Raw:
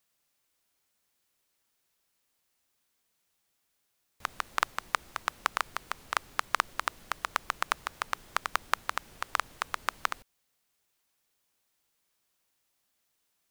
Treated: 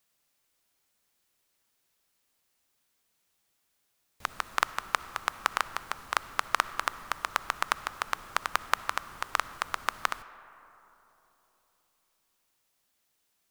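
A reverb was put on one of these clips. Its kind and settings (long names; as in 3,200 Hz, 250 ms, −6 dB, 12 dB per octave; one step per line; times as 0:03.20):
comb and all-pass reverb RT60 3.6 s, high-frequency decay 0.35×, pre-delay 20 ms, DRR 15 dB
level +1.5 dB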